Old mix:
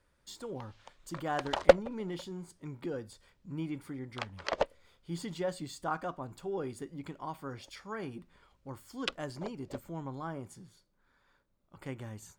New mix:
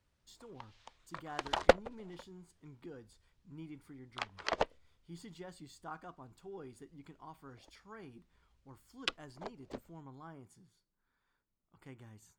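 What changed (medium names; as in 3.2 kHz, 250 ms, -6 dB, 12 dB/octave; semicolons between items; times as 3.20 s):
speech -11.0 dB; master: add peaking EQ 560 Hz -8.5 dB 0.22 oct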